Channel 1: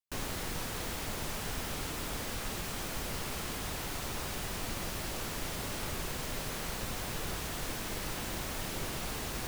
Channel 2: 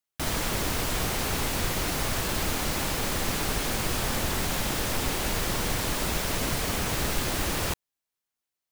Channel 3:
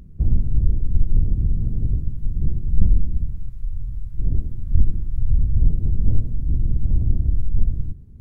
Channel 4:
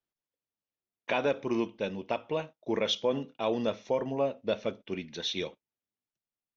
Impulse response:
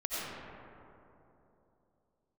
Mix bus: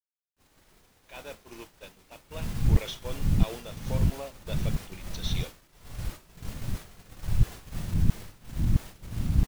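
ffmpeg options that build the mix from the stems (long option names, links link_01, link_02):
-filter_complex "[0:a]alimiter=level_in=7.5dB:limit=-24dB:level=0:latency=1:release=24,volume=-7.5dB,adelay=250,volume=-4.5dB[link_01];[1:a]alimiter=limit=-23dB:level=0:latency=1:release=104,asplit=2[link_02][link_03];[link_03]adelay=2.6,afreqshift=1.8[link_04];[link_02][link_04]amix=inputs=2:normalize=1,adelay=200,volume=-11.5dB[link_05];[2:a]equalizer=frequency=190:width=0.64:gain=14,aeval=exprs='val(0)*pow(10,-35*if(lt(mod(-1.5*n/s,1),2*abs(-1.5)/1000),1-mod(-1.5*n/s,1)/(2*abs(-1.5)/1000),(mod(-1.5*n/s,1)-2*abs(-1.5)/1000)/(1-2*abs(-1.5)/1000))/20)':channel_layout=same,adelay=2100,volume=-4.5dB[link_06];[3:a]aemphasis=mode=production:type=riaa,alimiter=limit=-22dB:level=0:latency=1:release=42,volume=-5.5dB[link_07];[link_01][link_05][link_06][link_07]amix=inputs=4:normalize=0,agate=range=-33dB:threshold=-30dB:ratio=3:detection=peak"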